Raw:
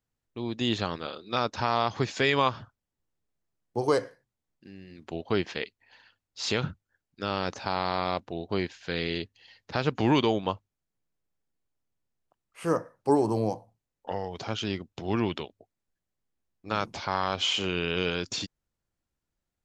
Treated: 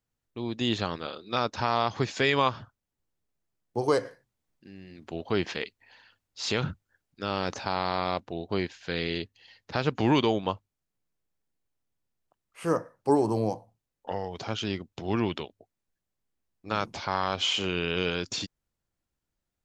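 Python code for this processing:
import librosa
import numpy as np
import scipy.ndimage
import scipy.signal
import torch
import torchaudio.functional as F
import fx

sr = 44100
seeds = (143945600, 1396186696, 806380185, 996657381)

y = fx.transient(x, sr, attack_db=-1, sustain_db=4, at=(4.04, 7.63), fade=0.02)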